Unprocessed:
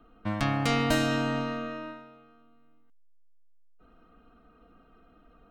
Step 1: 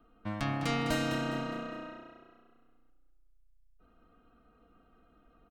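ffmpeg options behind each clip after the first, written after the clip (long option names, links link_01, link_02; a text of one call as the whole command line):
ffmpeg -i in.wav -filter_complex "[0:a]asplit=5[link_01][link_02][link_03][link_04][link_05];[link_02]adelay=205,afreqshift=30,volume=-9.5dB[link_06];[link_03]adelay=410,afreqshift=60,volume=-17.9dB[link_07];[link_04]adelay=615,afreqshift=90,volume=-26.3dB[link_08];[link_05]adelay=820,afreqshift=120,volume=-34.7dB[link_09];[link_01][link_06][link_07][link_08][link_09]amix=inputs=5:normalize=0,volume=-6dB" out.wav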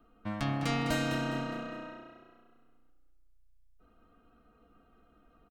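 ffmpeg -i in.wav -filter_complex "[0:a]asplit=2[link_01][link_02];[link_02]adelay=14,volume=-12dB[link_03];[link_01][link_03]amix=inputs=2:normalize=0" out.wav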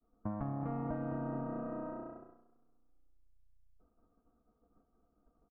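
ffmpeg -i in.wav -af "acompressor=threshold=-42dB:ratio=4,agate=range=-33dB:threshold=-52dB:ratio=3:detection=peak,lowpass=frequency=1100:width=0.5412,lowpass=frequency=1100:width=1.3066,volume=6dB" out.wav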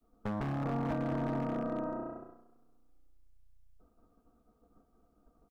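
ffmpeg -i in.wav -af "aeval=exprs='0.0224*(abs(mod(val(0)/0.0224+3,4)-2)-1)':channel_layout=same,volume=5.5dB" out.wav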